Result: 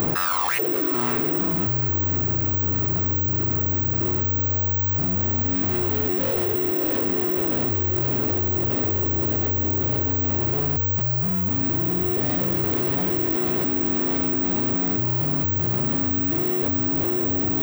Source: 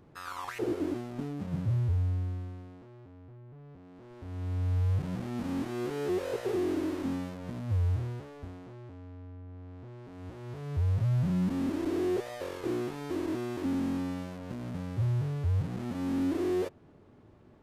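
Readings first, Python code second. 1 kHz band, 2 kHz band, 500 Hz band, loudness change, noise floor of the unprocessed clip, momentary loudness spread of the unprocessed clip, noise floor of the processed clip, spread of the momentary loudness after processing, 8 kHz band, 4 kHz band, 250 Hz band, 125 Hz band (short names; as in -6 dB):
+12.0 dB, +13.0 dB, +8.0 dB, +11.5 dB, -56 dBFS, 18 LU, -24 dBFS, 0 LU, +13.0 dB, +12.0 dB, +7.5 dB, +6.0 dB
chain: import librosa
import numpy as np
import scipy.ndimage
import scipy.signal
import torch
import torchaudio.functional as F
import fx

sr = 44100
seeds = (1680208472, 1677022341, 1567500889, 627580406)

p1 = fx.low_shelf(x, sr, hz=160.0, db=-5.0)
p2 = fx.echo_diffused(p1, sr, ms=644, feedback_pct=70, wet_db=-3.5)
p3 = 10.0 ** (-36.5 / 20.0) * (np.abs((p2 / 10.0 ** (-36.5 / 20.0) + 3.0) % 4.0 - 2.0) - 1.0)
p4 = p2 + (p3 * librosa.db_to_amplitude(-4.0))
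p5 = (np.kron(p4[::2], np.eye(2)[0]) * 2)[:len(p4)]
y = fx.env_flatten(p5, sr, amount_pct=100)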